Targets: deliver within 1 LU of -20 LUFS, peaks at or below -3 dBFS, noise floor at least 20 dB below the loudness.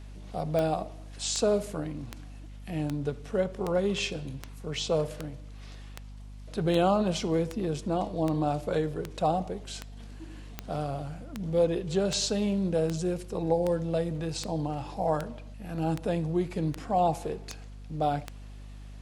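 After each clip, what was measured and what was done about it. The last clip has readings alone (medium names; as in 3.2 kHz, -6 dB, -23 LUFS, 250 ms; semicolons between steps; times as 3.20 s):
clicks found 24; hum 50 Hz; highest harmonic 250 Hz; hum level -42 dBFS; loudness -30.0 LUFS; peak level -12.0 dBFS; loudness target -20.0 LUFS
-> de-click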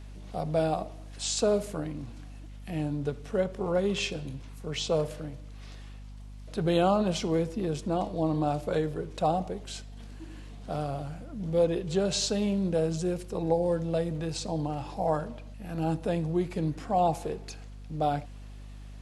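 clicks found 0; hum 50 Hz; highest harmonic 250 Hz; hum level -42 dBFS
-> de-hum 50 Hz, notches 5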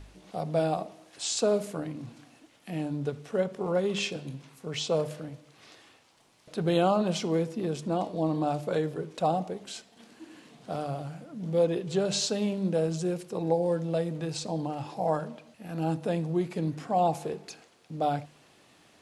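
hum not found; loudness -30.0 LUFS; peak level -12.0 dBFS; loudness target -20.0 LUFS
-> trim +10 dB; peak limiter -3 dBFS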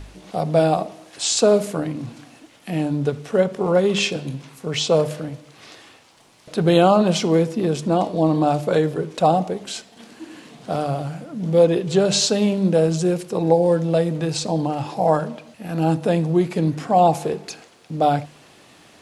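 loudness -20.0 LUFS; peak level -3.0 dBFS; noise floor -50 dBFS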